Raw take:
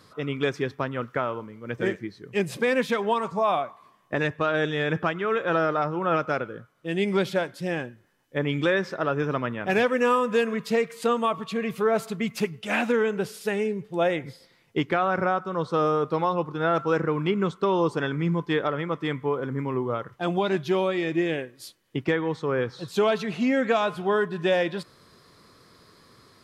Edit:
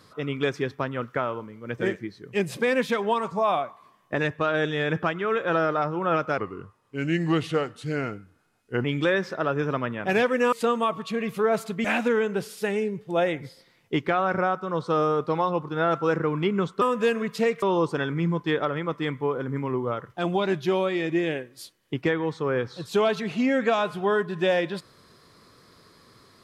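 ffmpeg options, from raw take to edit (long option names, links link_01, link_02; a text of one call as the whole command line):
ffmpeg -i in.wav -filter_complex "[0:a]asplit=7[link_01][link_02][link_03][link_04][link_05][link_06][link_07];[link_01]atrim=end=6.384[link_08];[link_02]atrim=start=6.38:end=8.45,asetpts=PTS-STARTPTS,asetrate=37044,aresample=44100[link_09];[link_03]atrim=start=8.446:end=10.132[link_10];[link_04]atrim=start=10.938:end=12.262[link_11];[link_05]atrim=start=12.678:end=17.652[link_12];[link_06]atrim=start=10.128:end=10.942[link_13];[link_07]atrim=start=17.648[link_14];[link_08][link_09]acrossfade=duration=0.004:curve1=hsin:curve2=hsin[link_15];[link_15][link_10]acrossfade=duration=0.004:curve1=hsin:curve2=hsin[link_16];[link_16][link_11]acrossfade=duration=0.004:curve1=hsin:curve2=hsin[link_17];[link_17][link_12]acrossfade=duration=0.004:curve1=hsin:curve2=hsin[link_18];[link_18][link_13]acrossfade=duration=0.004:curve1=hsin:curve2=hsin[link_19];[link_19][link_14]acrossfade=duration=0.004:curve1=hsin:curve2=hsin" out.wav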